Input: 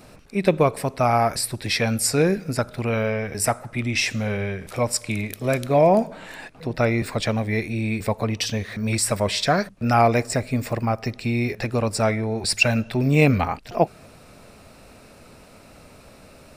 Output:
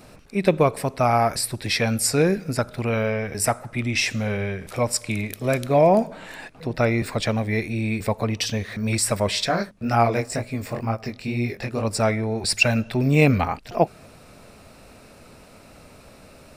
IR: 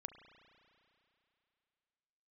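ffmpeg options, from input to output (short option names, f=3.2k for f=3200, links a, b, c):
-filter_complex "[0:a]asplit=3[a][b][c];[a]afade=t=out:st=9.46:d=0.02[d];[b]flanger=delay=17:depth=6.6:speed=2.1,afade=t=in:st=9.46:d=0.02,afade=t=out:st=11.85:d=0.02[e];[c]afade=t=in:st=11.85:d=0.02[f];[d][e][f]amix=inputs=3:normalize=0"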